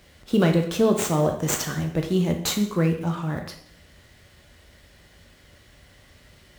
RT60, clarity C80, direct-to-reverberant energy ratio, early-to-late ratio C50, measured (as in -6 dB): 0.65 s, 11.5 dB, 3.5 dB, 7.5 dB